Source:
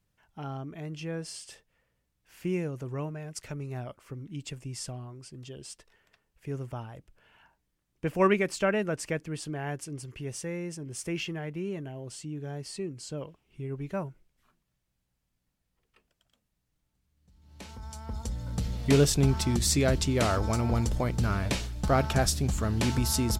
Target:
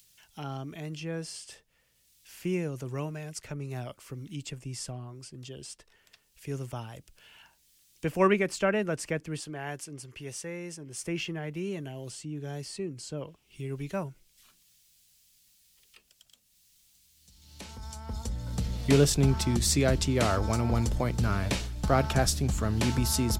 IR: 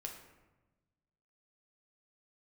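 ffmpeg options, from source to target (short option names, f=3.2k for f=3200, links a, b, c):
-filter_complex "[0:a]asettb=1/sr,asplit=3[a][b][c];[a]atrim=end=9.404[d];[b]atrim=start=9.4:end=11.02,asetpts=PTS-STARTPTS,afade=t=in:d=0.004:c=qsin,afade=t=out:st=1.616:d=0.004:c=qsin,lowshelf=f=380:g=-6.5[e];[c]atrim=start=11.016[f];[d][e]acrossfade=d=0.004:c1=hsin:c2=qsin[g];[g][f]acrossfade=d=0.004:c1=qsin:c2=hsin,acrossover=split=170|660|3000[h][i][j][k];[k]acompressor=mode=upward:threshold=-43dB:ratio=2.5[l];[h][i][j][l]amix=inputs=4:normalize=0"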